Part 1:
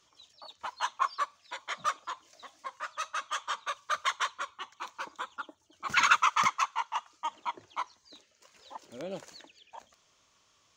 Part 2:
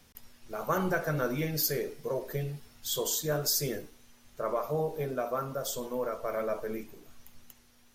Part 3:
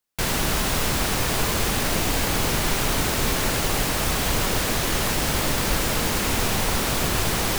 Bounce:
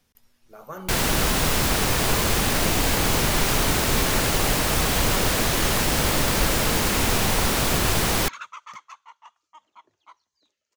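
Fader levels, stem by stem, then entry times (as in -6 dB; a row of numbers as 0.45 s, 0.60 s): -15.5 dB, -8.0 dB, +1.5 dB; 2.30 s, 0.00 s, 0.70 s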